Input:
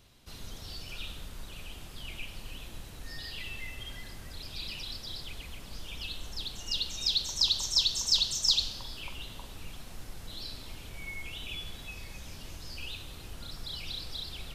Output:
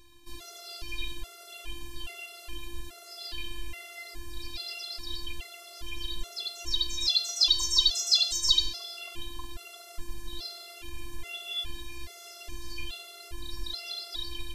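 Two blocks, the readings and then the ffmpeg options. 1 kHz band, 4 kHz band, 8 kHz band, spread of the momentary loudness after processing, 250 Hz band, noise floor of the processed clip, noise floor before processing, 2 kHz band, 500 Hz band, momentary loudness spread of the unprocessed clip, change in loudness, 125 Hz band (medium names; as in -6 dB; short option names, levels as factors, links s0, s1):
+3.0 dB, +3.0 dB, +2.5 dB, 21 LU, +1.0 dB, -49 dBFS, -47 dBFS, +1.0 dB, +2.5 dB, 20 LU, +3.5 dB, no reading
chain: -af "afftfilt=real='hypot(re,im)*cos(PI*b)':imag='0':win_size=512:overlap=0.75,acontrast=49,afftfilt=real='re*gt(sin(2*PI*1.2*pts/sr)*(1-2*mod(floor(b*sr/1024/370),2)),0)':imag='im*gt(sin(2*PI*1.2*pts/sr)*(1-2*mod(floor(b*sr/1024/370),2)),0)':win_size=1024:overlap=0.75,volume=1.5"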